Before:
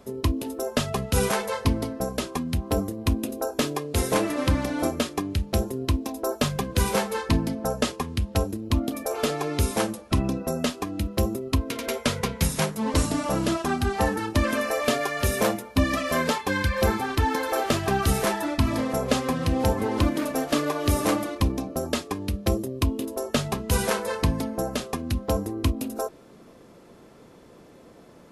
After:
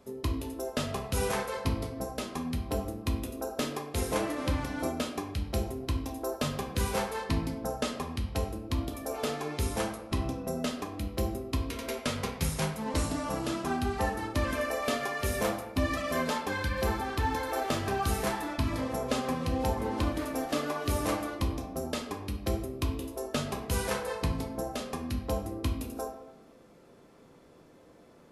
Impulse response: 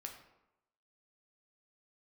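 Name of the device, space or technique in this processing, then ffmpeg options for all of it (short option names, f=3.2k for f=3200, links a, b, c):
bathroom: -filter_complex "[1:a]atrim=start_sample=2205[a];[0:a][a]afir=irnorm=-1:irlink=0,volume=-2.5dB"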